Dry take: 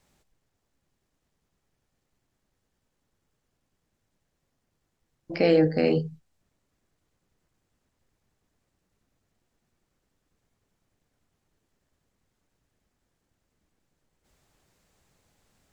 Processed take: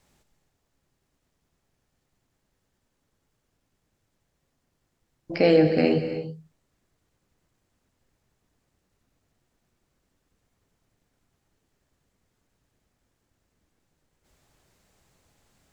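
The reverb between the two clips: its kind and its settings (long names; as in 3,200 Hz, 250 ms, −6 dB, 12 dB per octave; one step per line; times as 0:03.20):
reverb whose tail is shaped and stops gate 350 ms flat, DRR 8 dB
level +2 dB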